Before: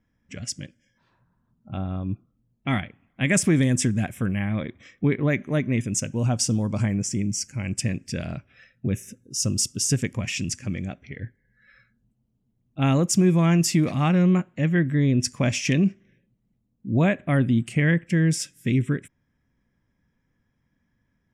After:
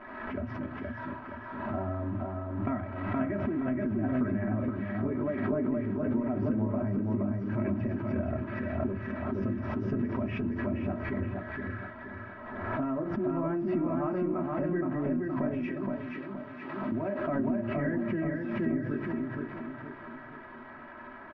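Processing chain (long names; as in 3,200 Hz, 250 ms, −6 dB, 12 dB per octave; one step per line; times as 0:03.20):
spike at every zero crossing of −21.5 dBFS
brickwall limiter −19 dBFS, peak gain reduction 10.5 dB
inverse Chebyshev low-pass filter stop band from 7,400 Hz, stop band 80 dB
low-shelf EQ 200 Hz −6.5 dB
comb filter 3.1 ms, depth 76%
convolution reverb RT60 0.20 s, pre-delay 5 ms, DRR 4 dB
downward compressor, threshold −31 dBFS, peak gain reduction 12.5 dB
0:15.63–0:16.92: spectral tilt +3.5 dB per octave
repeating echo 471 ms, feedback 45%, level −3 dB
background raised ahead of every attack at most 39 dB per second
level +1.5 dB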